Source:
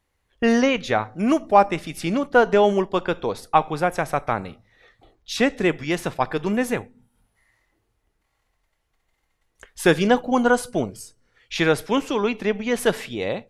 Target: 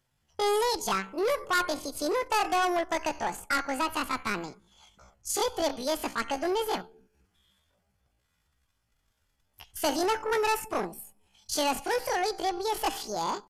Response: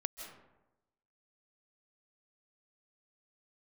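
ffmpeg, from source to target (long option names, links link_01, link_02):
-af "bandreject=frequency=2100:width=7.6,aresample=16000,asoftclip=type=tanh:threshold=-20dB,aresample=44100,asetrate=78577,aresample=44100,atempo=0.561231,crystalizer=i=0.5:c=0,volume=-2.5dB"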